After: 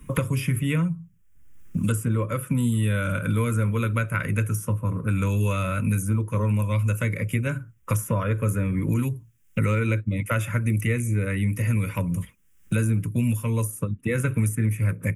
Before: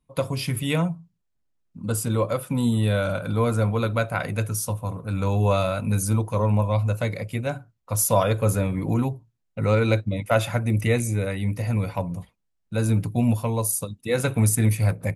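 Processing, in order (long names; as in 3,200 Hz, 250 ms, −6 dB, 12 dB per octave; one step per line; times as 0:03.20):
phaser with its sweep stopped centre 1,800 Hz, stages 4
multiband upward and downward compressor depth 100%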